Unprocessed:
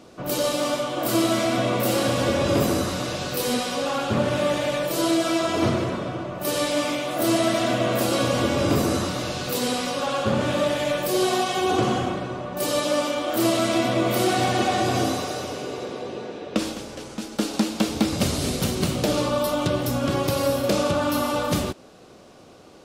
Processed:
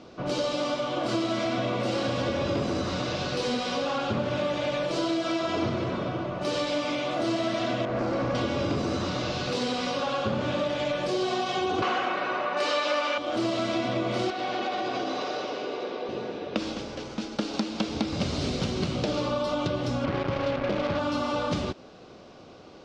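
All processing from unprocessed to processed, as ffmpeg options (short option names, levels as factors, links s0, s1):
-filter_complex "[0:a]asettb=1/sr,asplit=3[s0][s1][s2];[s0]atrim=end=7.854[s3];[s1]atrim=start=7.85:end=8.35,asetpts=PTS-STARTPTS,afade=t=in:d=0.004:c=qsin,afade=t=out:st=0.496:d=0.004:c=qsin,lowpass=4200,equalizer=f=3300:w=1.3:g=-15,asoftclip=type=hard:threshold=0.0794[s4];[s2]atrim=start=8.346[s5];[s3][s4]acrossfade=d=0.004:c1=hsin:c2=qsin[s6];[s6][s5]acrossfade=d=0.004:c1=qsin:c2=hsin,asettb=1/sr,asplit=3[s7][s8][s9];[s7]atrim=end=11.824[s10];[s8]atrim=start=11.82:end=13.18,asetpts=PTS-STARTPTS,afade=t=in:d=0.004:c=qsin,afade=t=out:st=1.356:d=0.004:c=qsin,highpass=310,equalizer=f=1800:t=o:w=2.7:g=13.5,bandreject=f=3300:w=17[s11];[s9]atrim=start=13.176[s12];[s10][s11]acrossfade=d=0.004:c1=hsin:c2=qsin[s13];[s13][s12]acrossfade=d=0.004:c1=qsin:c2=hsin,asettb=1/sr,asplit=3[s14][s15][s16];[s14]atrim=end=14.304[s17];[s15]atrim=start=14.3:end=16.09,asetpts=PTS-STARTPTS,afade=t=in:d=0.004:c=qsin,afade=t=out:st=1.786:d=0.004:c=qsin,highpass=300,lowpass=4900,acompressor=threshold=0.0562:ratio=4:attack=3.2:release=140:knee=1:detection=peak[s18];[s16]atrim=start=16.086[s19];[s17][s18]acrossfade=d=0.004:c1=hsin:c2=qsin[s20];[s20][s19]acrossfade=d=0.004:c1=qsin:c2=hsin,asettb=1/sr,asplit=3[s21][s22][s23];[s21]atrim=end=20.044[s24];[s22]atrim=start=20.04:end=20.99,asetpts=PTS-STARTPTS,afade=t=in:d=0.004:c=qsin,afade=t=out:st=0.946:d=0.004:c=qsin,lowpass=1600,acrusher=bits=3:mix=0:aa=0.5[s25];[s23]atrim=start=20.986[s26];[s24][s25]acrossfade=d=0.004:c1=hsin:c2=qsin[s27];[s27][s26]acrossfade=d=0.004:c1=qsin:c2=hsin,lowpass=f=5600:w=0.5412,lowpass=f=5600:w=1.3066,bandreject=f=1800:w=25,acompressor=threshold=0.0562:ratio=4"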